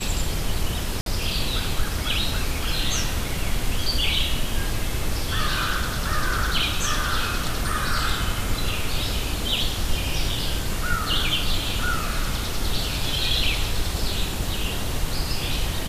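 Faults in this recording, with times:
1.01–1.06 s: dropout 52 ms

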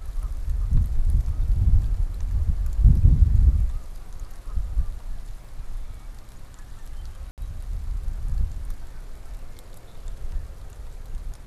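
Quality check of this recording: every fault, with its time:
5.44 s: dropout 4 ms
7.31–7.38 s: dropout 68 ms

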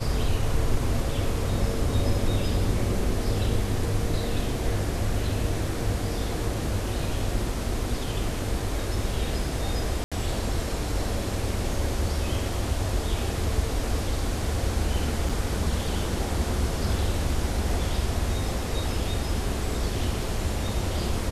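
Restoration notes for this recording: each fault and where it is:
10.04–10.12 s: dropout 76 ms
15.29 s: dropout 4.9 ms

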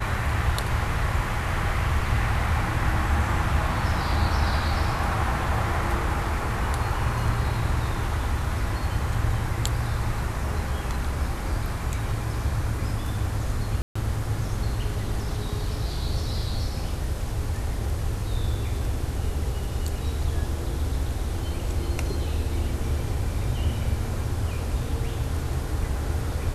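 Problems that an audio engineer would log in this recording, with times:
13.82–13.96 s: dropout 135 ms

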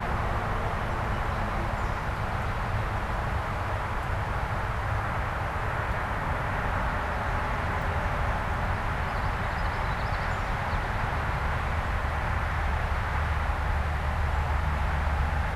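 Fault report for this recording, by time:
7.82 s: dropout 3 ms

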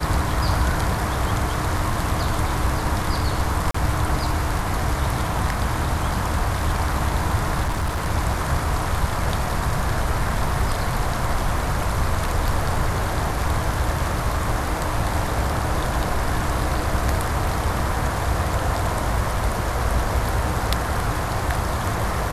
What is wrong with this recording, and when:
3.71–3.74 s: dropout 34 ms
7.62–8.09 s: clipped -19 dBFS

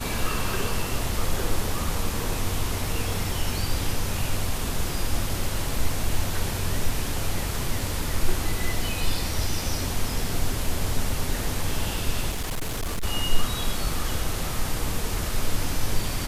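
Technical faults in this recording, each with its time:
12.30–13.04 s: clipped -24 dBFS

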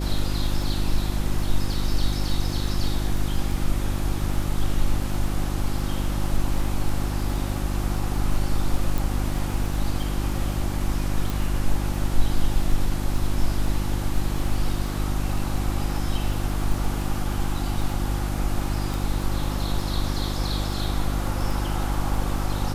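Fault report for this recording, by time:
crackle 10 per s -28 dBFS
hum 50 Hz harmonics 7 -27 dBFS
8.98 s: pop
11.30 s: pop
18.94 s: pop

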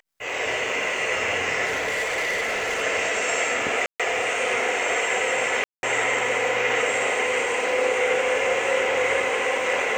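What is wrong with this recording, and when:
1.65–2.83 s: clipped -21.5 dBFS
3.86–4.00 s: dropout 136 ms
5.64–5.83 s: dropout 191 ms

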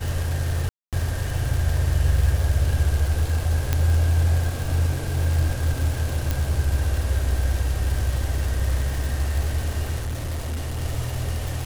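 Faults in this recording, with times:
crackle 270 per s -27 dBFS
0.69–0.93 s: dropout 237 ms
3.73 s: pop -7 dBFS
6.31 s: pop
10.00–10.83 s: clipped -24 dBFS

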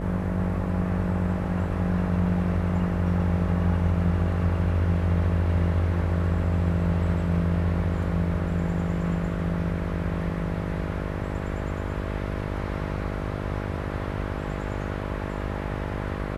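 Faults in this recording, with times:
buzz 50 Hz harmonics 13 -31 dBFS

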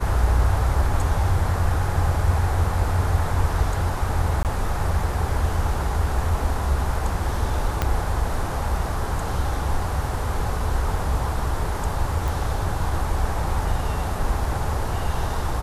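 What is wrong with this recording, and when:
4.43–4.45 s: dropout 18 ms
7.82 s: pop -7 dBFS
12.28 s: pop

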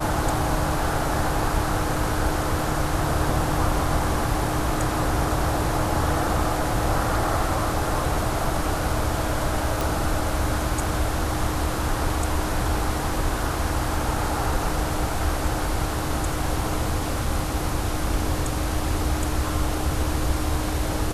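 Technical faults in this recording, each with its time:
9.81 s: pop

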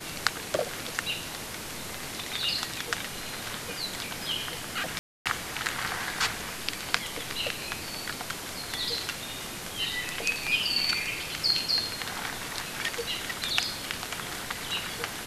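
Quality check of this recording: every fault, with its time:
4.99–5.26 s: dropout 267 ms

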